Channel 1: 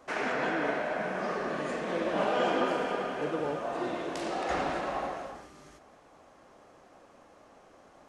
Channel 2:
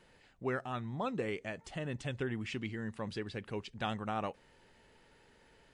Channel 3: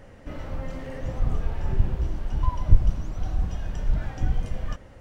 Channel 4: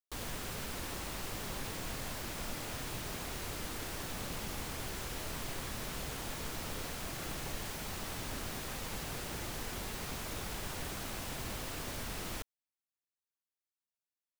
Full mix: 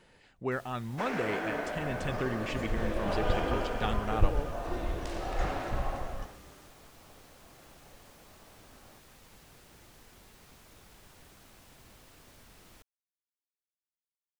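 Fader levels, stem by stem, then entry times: −4.5, +2.5, −10.0, −15.5 decibels; 0.90, 0.00, 1.50, 0.40 seconds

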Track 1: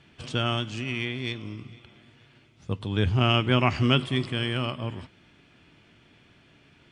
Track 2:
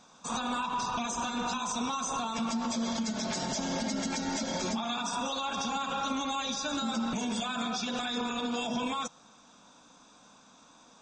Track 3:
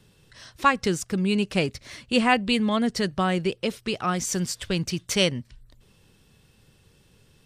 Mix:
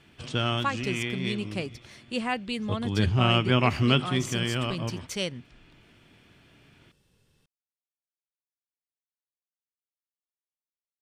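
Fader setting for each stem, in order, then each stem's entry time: −0.5 dB, muted, −9.0 dB; 0.00 s, muted, 0.00 s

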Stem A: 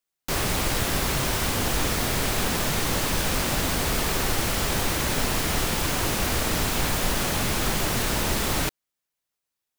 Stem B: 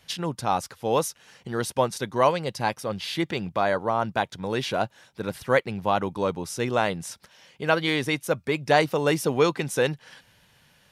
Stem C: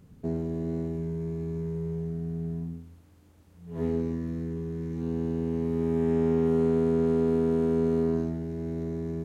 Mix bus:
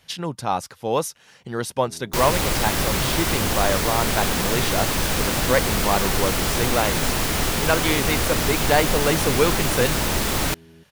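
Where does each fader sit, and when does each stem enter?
+2.5, +1.0, −16.0 decibels; 1.85, 0.00, 1.60 seconds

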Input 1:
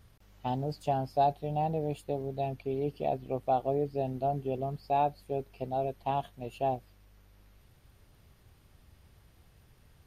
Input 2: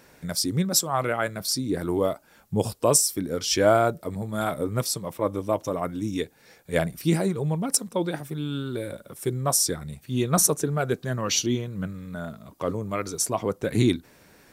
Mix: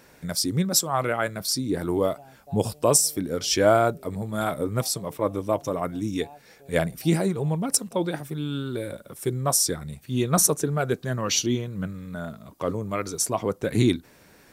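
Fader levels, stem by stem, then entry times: −19.5, +0.5 decibels; 1.30, 0.00 seconds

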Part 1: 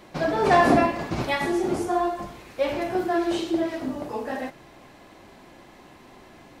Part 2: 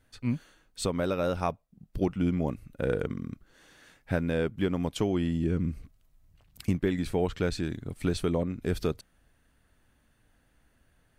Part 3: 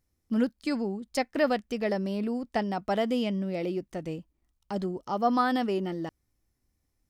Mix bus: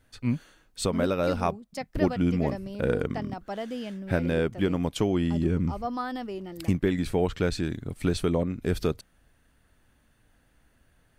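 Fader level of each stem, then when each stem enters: muted, +2.5 dB, −7.0 dB; muted, 0.00 s, 0.60 s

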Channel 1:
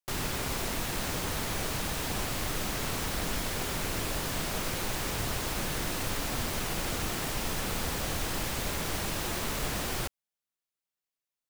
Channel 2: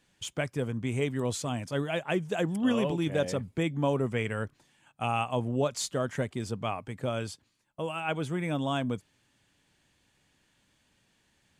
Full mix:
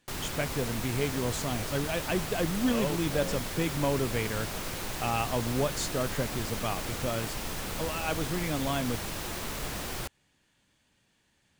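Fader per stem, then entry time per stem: −3.0, −1.0 decibels; 0.00, 0.00 seconds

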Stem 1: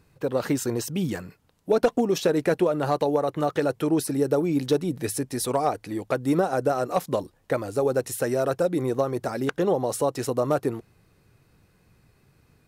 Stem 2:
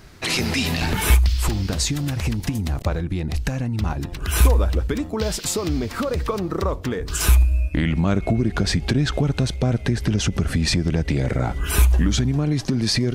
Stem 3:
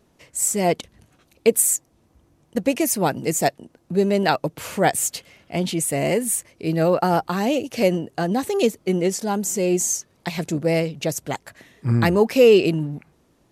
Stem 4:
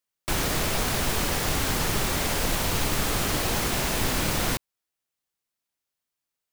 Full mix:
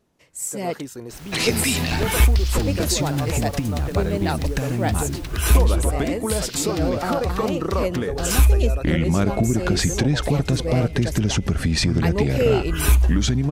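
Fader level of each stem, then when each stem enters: −8.5, 0.0, −7.0, −19.0 decibels; 0.30, 1.10, 0.00, 0.85 seconds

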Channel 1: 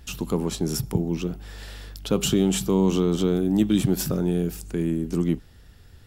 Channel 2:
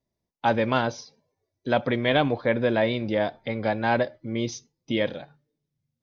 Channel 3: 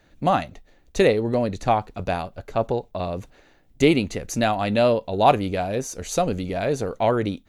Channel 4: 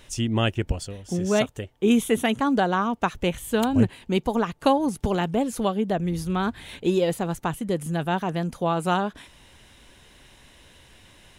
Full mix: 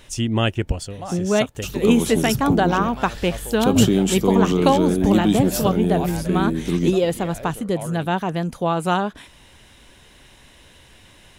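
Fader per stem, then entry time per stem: +2.5, −13.0, −14.0, +3.0 decibels; 1.55, 2.25, 0.75, 0.00 seconds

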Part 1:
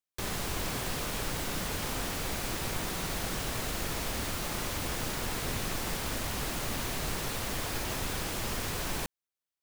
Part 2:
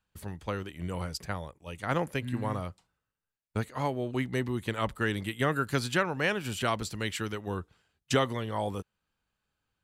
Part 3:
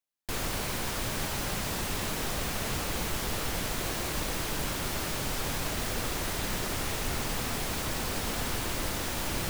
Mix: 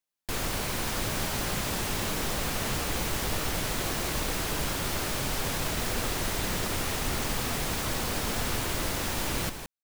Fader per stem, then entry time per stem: −5.5 dB, muted, +1.5 dB; 0.60 s, muted, 0.00 s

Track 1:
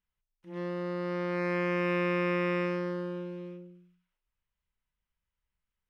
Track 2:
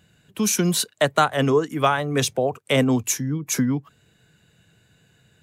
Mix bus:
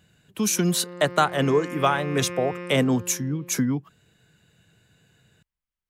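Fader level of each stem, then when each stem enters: −5.0, −2.0 decibels; 0.00, 0.00 seconds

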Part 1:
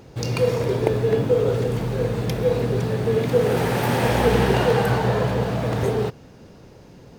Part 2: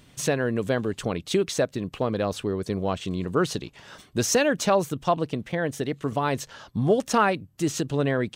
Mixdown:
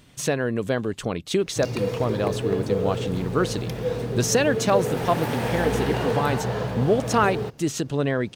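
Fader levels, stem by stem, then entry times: −6.0, +0.5 decibels; 1.40, 0.00 seconds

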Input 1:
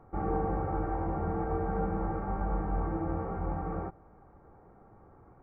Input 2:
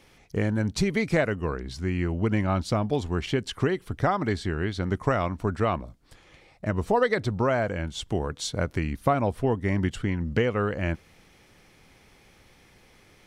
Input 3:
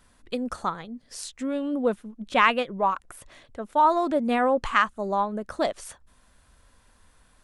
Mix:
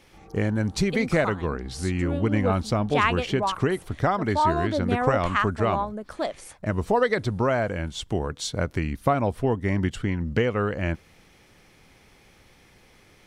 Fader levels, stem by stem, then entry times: −18.0, +1.0, −3.0 decibels; 0.00, 0.00, 0.60 seconds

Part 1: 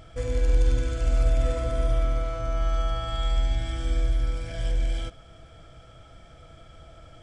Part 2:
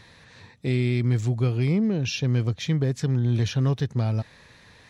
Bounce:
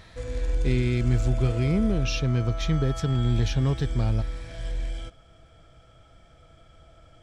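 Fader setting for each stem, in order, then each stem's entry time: −5.0, −1.5 decibels; 0.00, 0.00 seconds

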